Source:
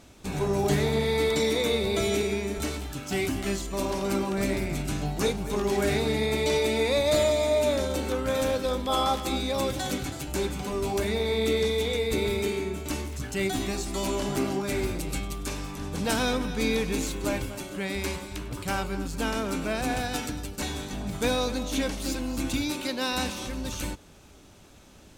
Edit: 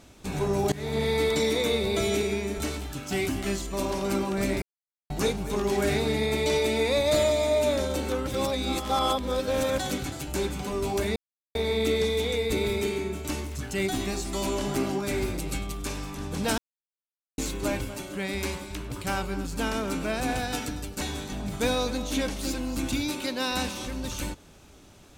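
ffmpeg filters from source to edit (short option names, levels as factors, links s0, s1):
-filter_complex "[0:a]asplit=9[s0][s1][s2][s3][s4][s5][s6][s7][s8];[s0]atrim=end=0.72,asetpts=PTS-STARTPTS,afade=t=out:st=0.716:d=0.004:c=hsin:silence=0.0749894[s9];[s1]atrim=start=0.72:end=4.62,asetpts=PTS-STARTPTS,afade=t=in:d=0.32:silence=0.0749894,afade=t=out:st=3.896:d=0.004:c=hsin[s10];[s2]atrim=start=4.62:end=5.1,asetpts=PTS-STARTPTS,volume=0[s11];[s3]atrim=start=5.1:end=8.272,asetpts=PTS-STARTPTS,afade=t=in:d=0.004:c=hsin[s12];[s4]atrim=start=8.268:end=9.782,asetpts=PTS-STARTPTS,areverse[s13];[s5]atrim=start=9.778:end=11.16,asetpts=PTS-STARTPTS,afade=t=out:st=1.378:d=0.004:c=hsin,apad=pad_dur=0.39[s14];[s6]atrim=start=11.16:end=16.19,asetpts=PTS-STARTPTS,afade=t=in:d=0.004:c=hsin,afade=t=out:st=5.026:d=0.004:c=hsin[s15];[s7]atrim=start=16.19:end=16.99,asetpts=PTS-STARTPTS,volume=0[s16];[s8]atrim=start=16.99,asetpts=PTS-STARTPTS,afade=t=in:d=0.004:c=hsin[s17];[s9][s10][s11][s12]concat=n=4:v=0:a=1[s18];[s18][s13]acrossfade=d=0.004:c1=hsin:c2=hsin[s19];[s14][s15][s16][s17]concat=n=4:v=0:a=1[s20];[s19][s20]acrossfade=d=0.004:c1=hsin:c2=hsin"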